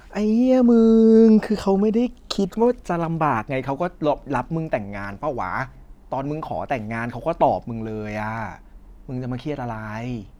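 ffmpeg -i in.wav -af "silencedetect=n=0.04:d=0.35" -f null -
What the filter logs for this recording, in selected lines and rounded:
silence_start: 5.64
silence_end: 6.12 | silence_duration: 0.48
silence_start: 8.54
silence_end: 9.09 | silence_duration: 0.55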